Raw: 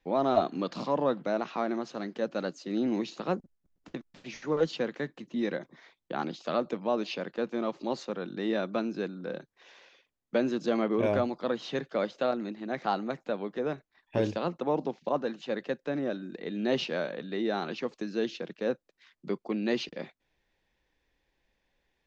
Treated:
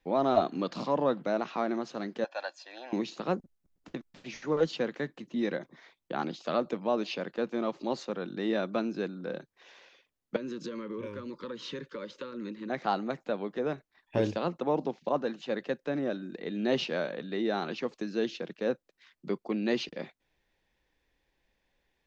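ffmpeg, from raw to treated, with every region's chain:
-filter_complex "[0:a]asettb=1/sr,asplit=3[a][b][c];[a]atrim=end=2.244[d];[b]atrim=start=2.24:end=2.93,asetpts=PTS-STARTPTS,afade=t=in:d=0.004:c=qsin,afade=t=out:st=0.686:d=0.004:c=qsin,highpass=f=370:w=0.5412,highpass=f=370:w=1.3066,acrossover=split=480 5500:gain=0.0631 1 0.251[e][f][g];[e][f][g]amix=inputs=3:normalize=0,aecho=1:1:1.2:0.79,atrim=end_sample=30429[h];[c]atrim=start=2.926[i];[d][h]acrossfade=d=0.004:c1=hsin:c2=qsin[j];[j][i]acrossfade=d=0.004:c1=qsin:c2=hsin,asettb=1/sr,asplit=3[k][l][m];[k]atrim=end=10.364[n];[l]atrim=start=10.36:end=12.7,asetpts=PTS-STARTPTS,afade=t=in:d=0.004:c=qsin,afade=t=out:st=2.336:d=0.004:c=qsin,acompressor=threshold=-33dB:ratio=10:attack=3.2:release=140:knee=1:detection=peak,asuperstop=centerf=720:order=20:qfactor=2.4[o];[m]atrim=start=12.696[p];[n][o]acrossfade=d=0.004:c1=hsin:c2=qsin[q];[q][p]acrossfade=d=0.004:c1=qsin:c2=hsin"

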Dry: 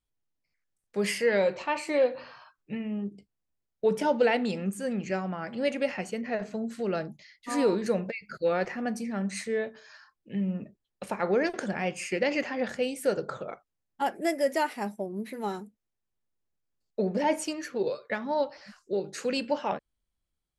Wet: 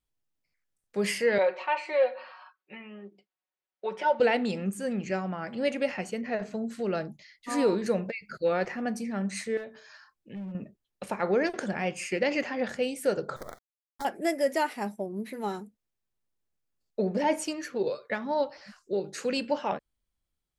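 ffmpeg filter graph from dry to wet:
-filter_complex "[0:a]asettb=1/sr,asplit=3[a][b][c];[a]atrim=end=1.384[d];[b]atrim=start=1.38:end=4.2,asetpts=PTS-STARTPTS,afade=t=in:d=0.004:c=qsin,afade=t=out:st=2.816:d=0.004:c=qsin,highpass=610,lowpass=3.1k,aecho=1:1:5.4:0.81,atrim=end_sample=124362[e];[c]atrim=start=4.196[f];[d][e]acrossfade=d=0.004:c1=hsin:c2=qsin[g];[g][f]acrossfade=d=0.004:c1=qsin:c2=hsin,asettb=1/sr,asplit=3[h][i][j];[h]atrim=end=9.574[k];[i]atrim=start=9.57:end=10.55,asetpts=PTS-STARTPTS,afade=t=in:d=0.004:c=qsin,afade=t=out:st=0.976:d=0.004:c=qsin,volume=27dB,asoftclip=hard,volume=-27dB,acompressor=threshold=-42dB:ratio=2:attack=3.2:release=140:knee=1:detection=peak[l];[j]atrim=start=10.546[m];[k][l]acrossfade=d=0.004:c1=hsin:c2=qsin[n];[n][m]acrossfade=d=0.004:c1=qsin:c2=hsin,asettb=1/sr,asplit=3[o][p][q];[o]atrim=end=13.364[r];[p]atrim=start=13.36:end=14.05,asetpts=PTS-STARTPTS,afade=t=in:d=0.004:c=qsin,afade=t=out:st=0.686:d=0.004:c=qsin,acrusher=bits=6:dc=4:mix=0:aa=0.000001,acompressor=threshold=-35dB:ratio=3:attack=3.2:release=140:knee=1:detection=peak,asuperstop=centerf=2700:order=4:qfactor=1.8[s];[q]atrim=start=14.046[t];[r][s]acrossfade=d=0.004:c1=hsin:c2=qsin[u];[u][t]acrossfade=d=0.004:c1=qsin:c2=hsin"

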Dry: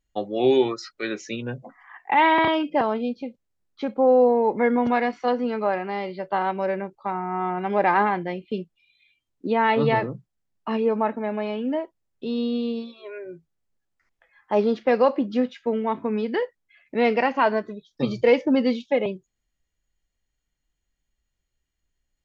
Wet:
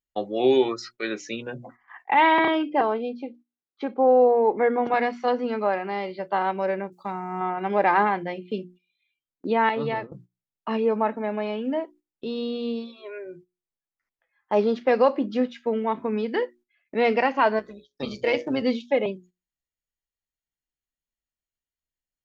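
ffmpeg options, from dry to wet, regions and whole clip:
-filter_complex "[0:a]asettb=1/sr,asplit=3[a][b][c];[a]atrim=end=2.394[d];[b]atrim=start=2.39:end=4.94,asetpts=PTS-STARTPTS,afade=t=in:d=0.004:c=qsin,afade=t=out:st=2.546:d=0.004:c=qsin,highpass=160,aemphasis=mode=reproduction:type=50fm,aecho=1:1:2.6:0.31,atrim=end_sample=112455[e];[c]atrim=start=4.936[f];[d][e]acrossfade=d=0.004:c1=hsin:c2=qsin[g];[g][f]acrossfade=d=0.004:c1=qsin:c2=hsin,asettb=1/sr,asplit=3[h][i][j];[h]atrim=end=6.924[k];[i]atrim=start=6.92:end=7.41,asetpts=PTS-STARTPTS,afade=t=in:d=0.004:c=qsin,afade=t=out:st=0.486:d=0.004:c=qsin,bass=f=250:g=11,treble=f=4k:g=15,acompressor=threshold=-31dB:ratio=1.5:attack=3.2:release=140:knee=1:detection=peak,highpass=130[l];[j]atrim=start=7.406[m];[k][l]acrossfade=d=0.004:c1=hsin:c2=qsin[n];[n][m]acrossfade=d=0.004:c1=qsin:c2=hsin,asettb=1/sr,asplit=3[o][p][q];[o]atrim=end=9.694[r];[p]atrim=start=9.69:end=10.12,asetpts=PTS-STARTPTS,afade=t=in:d=0.004:c=qsin,afade=t=out:st=0.426:d=0.004:c=qsin,agate=range=-33dB:threshold=-20dB:ratio=3:release=100:detection=peak,acompressor=threshold=-24dB:ratio=2.5:attack=3.2:release=140:knee=1:detection=peak[s];[q]atrim=start=10.116[t];[r][s]acrossfade=d=0.004:c1=hsin:c2=qsin[u];[u][t]acrossfade=d=0.004:c1=qsin:c2=hsin,asettb=1/sr,asplit=3[v][w][x];[v]atrim=end=17.594[y];[w]atrim=start=17.59:end=18.62,asetpts=PTS-STARTPTS,afade=t=in:d=0.004:c=qsin,afade=t=out:st=1.026:d=0.004:c=qsin,tiltshelf=f=1.2k:g=-3.5,bandreject=f=60:t=h:w=6,bandreject=f=120:t=h:w=6,bandreject=f=180:t=h:w=6,bandreject=f=240:t=h:w=6,bandreject=f=300:t=h:w=6,bandreject=f=360:t=h:w=6,bandreject=f=420:t=h:w=6,bandreject=f=480:t=h:w=6,tremolo=f=140:d=0.519[z];[x]atrim=start=18.616[aa];[y][z]acrossfade=d=0.004:c1=hsin:c2=qsin[ab];[ab][aa]acrossfade=d=0.004:c1=qsin:c2=hsin,lowshelf=f=91:g=-8.5,bandreject=f=60:t=h:w=6,bandreject=f=120:t=h:w=6,bandreject=f=180:t=h:w=6,bandreject=f=240:t=h:w=6,bandreject=f=300:t=h:w=6,bandreject=f=360:t=h:w=6,agate=range=-13dB:threshold=-48dB:ratio=16:detection=peak"

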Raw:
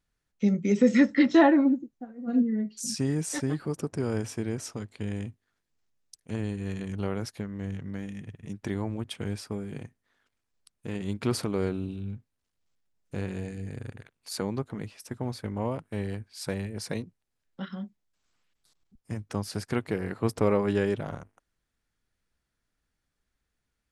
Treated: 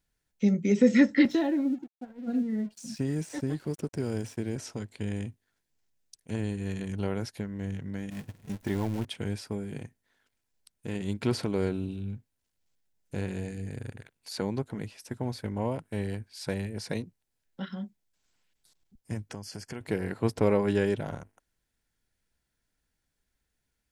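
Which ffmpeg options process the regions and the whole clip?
-filter_complex "[0:a]asettb=1/sr,asplit=3[a][b][c];[a]atrim=end=1.254[d];[b]atrim=start=1.25:end=4.56,asetpts=PTS-STARTPTS,afade=t=in:d=0.004:c=qsin,afade=t=out:st=3.306:d=0.004:c=qsin,acrossover=split=570|1400|3100[e][f][g][h];[e]acompressor=threshold=-26dB:ratio=3[i];[f]acompressor=threshold=-48dB:ratio=3[j];[g]acompressor=threshold=-52dB:ratio=3[k];[h]acompressor=threshold=-45dB:ratio=3[l];[i][j][k][l]amix=inputs=4:normalize=0,aeval=exprs='sgn(val(0))*max(abs(val(0))-0.002,0)':c=same[m];[c]atrim=start=4.556[n];[d][m]acrossfade=d=0.004:c1=hsin:c2=qsin[o];[o][n]acrossfade=d=0.004:c1=qsin:c2=hsin,asettb=1/sr,asplit=3[p][q][r];[p]atrim=end=8.104[s];[q]atrim=start=8.1:end=9.05,asetpts=PTS-STARTPTS,afade=t=in:d=0.004:c=qsin,afade=t=out:st=0.946:d=0.004:c=qsin,aeval=exprs='val(0)+0.5*0.015*sgn(val(0))':c=same,agate=range=-18dB:threshold=-36dB:ratio=16:release=100:detection=peak[t];[r]atrim=start=9.046[u];[s][t]acrossfade=d=0.004:c1=hsin:c2=qsin[v];[v][u]acrossfade=d=0.004:c1=qsin:c2=hsin,asettb=1/sr,asplit=3[w][x][y];[w]atrim=end=19.324[z];[x]atrim=start=19.32:end=19.81,asetpts=PTS-STARTPTS,afade=t=in:d=0.004:c=qsin,afade=t=out:st=0.486:d=0.004:c=qsin,equalizer=f=6.4k:w=1.4:g=6,acompressor=threshold=-38dB:ratio=3:attack=3.2:release=140:knee=1:detection=peak,asuperstop=centerf=3800:order=8:qfactor=5.8[aa];[y]atrim=start=19.806[ab];[z][aa]acrossfade=d=0.004:c1=hsin:c2=qsin[ac];[ac][ab]acrossfade=d=0.004:c1=qsin:c2=hsin,acrossover=split=5400[ad][ae];[ae]acompressor=threshold=-51dB:ratio=4:attack=1:release=60[af];[ad][af]amix=inputs=2:normalize=0,highshelf=f=7.3k:g=6,bandreject=f=1.2k:w=6.8"

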